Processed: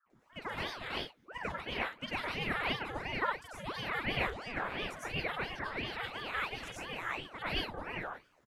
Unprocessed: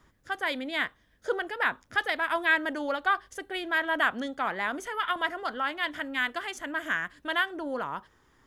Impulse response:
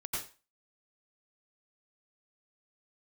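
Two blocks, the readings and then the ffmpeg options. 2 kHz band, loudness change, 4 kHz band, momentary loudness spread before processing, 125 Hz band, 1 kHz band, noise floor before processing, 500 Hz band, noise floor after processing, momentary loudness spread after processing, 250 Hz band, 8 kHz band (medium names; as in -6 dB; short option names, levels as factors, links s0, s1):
-9.5 dB, -8.0 dB, -3.5 dB, 8 LU, no reading, -8.0 dB, -65 dBFS, -7.5 dB, -69 dBFS, 7 LU, -7.5 dB, -6.5 dB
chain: -filter_complex "[0:a]acrossover=split=400|2200[s0][s1][s2];[s1]adelay=60[s3];[s2]adelay=100[s4];[s0][s3][s4]amix=inputs=3:normalize=0[s5];[1:a]atrim=start_sample=2205,afade=t=out:st=0.22:d=0.01,atrim=end_sample=10143[s6];[s5][s6]afir=irnorm=-1:irlink=0,aeval=exprs='val(0)*sin(2*PI*830*n/s+830*0.8/2.9*sin(2*PI*2.9*n/s))':c=same,volume=0.531"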